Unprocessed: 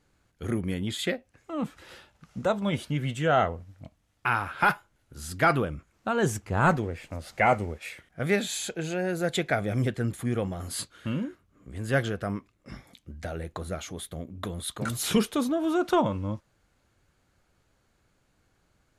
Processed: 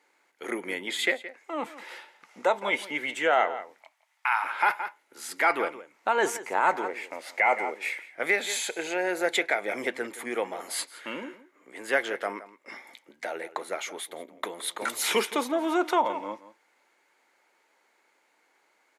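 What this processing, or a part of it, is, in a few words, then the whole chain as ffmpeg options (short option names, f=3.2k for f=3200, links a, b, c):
laptop speaker: -filter_complex "[0:a]asettb=1/sr,asplit=3[a][b][c];[a]atrim=end=3.754[d];[b]atrim=start=3.75:end=4.44,asetpts=PTS-STARTPTS,afade=t=in:d=0.004:c=qsin,afade=t=out:st=0.686:d=0.004:c=qsin,highpass=f=780:w=0.5412,highpass=f=780:w=1.3066[e];[c]atrim=start=4.436[f];[d][e]acrossfade=d=0.004:c1=hsin:c2=qsin[g];[g][f]acrossfade=d=0.004:c1=qsin:c2=hsin,highpass=f=340:w=0.5412,highpass=f=340:w=1.3066,equalizer=f=900:t=o:w=0.3:g=9.5,equalizer=f=2.1k:t=o:w=0.43:g=11,asplit=2[h][i];[i]adelay=169.1,volume=-16dB,highshelf=f=4k:g=-3.8[j];[h][j]amix=inputs=2:normalize=0,alimiter=limit=-14dB:level=0:latency=1:release=180,volume=1.5dB"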